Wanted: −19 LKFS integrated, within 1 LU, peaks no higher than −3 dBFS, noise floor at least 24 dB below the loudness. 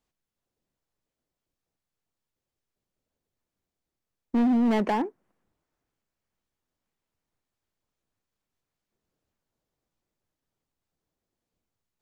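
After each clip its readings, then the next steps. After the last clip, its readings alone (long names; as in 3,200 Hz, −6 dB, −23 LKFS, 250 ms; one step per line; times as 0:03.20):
share of clipped samples 1.2%; peaks flattened at −19.5 dBFS; integrated loudness −25.0 LKFS; sample peak −19.5 dBFS; target loudness −19.0 LKFS
→ clipped peaks rebuilt −19.5 dBFS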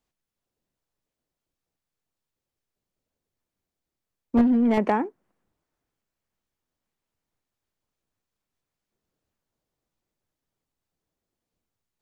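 share of clipped samples 0.0%; integrated loudness −22.5 LKFS; sample peak −10.5 dBFS; target loudness −19.0 LKFS
→ level +3.5 dB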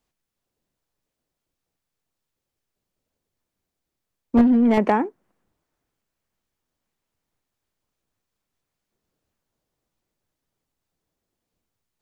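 integrated loudness −19.0 LKFS; sample peak −7.0 dBFS; background noise floor −84 dBFS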